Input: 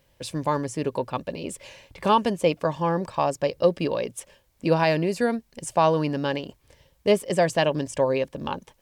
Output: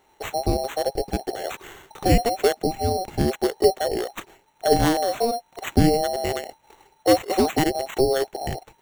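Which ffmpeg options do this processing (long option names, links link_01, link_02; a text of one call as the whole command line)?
ffmpeg -i in.wav -af "afftfilt=real='real(if(lt(b,736),b+184*(1-2*mod(floor(b/184),2)),b),0)':imag='imag(if(lt(b,736),b+184*(1-2*mod(floor(b/184),2)),b),0)':win_size=2048:overlap=0.75,adynamicequalizer=threshold=0.0398:dfrequency=4600:dqfactor=1.6:tfrequency=4600:tqfactor=1.6:attack=5:release=100:ratio=0.375:range=2:mode=cutabove:tftype=bell,acrusher=samples=9:mix=1:aa=0.000001,volume=3dB" out.wav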